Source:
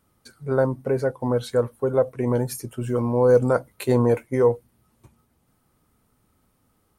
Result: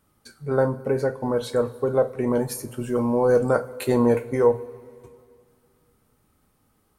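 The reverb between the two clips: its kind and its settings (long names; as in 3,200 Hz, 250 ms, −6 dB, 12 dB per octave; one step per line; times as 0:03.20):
coupled-rooms reverb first 0.24 s, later 2.3 s, from −20 dB, DRR 6 dB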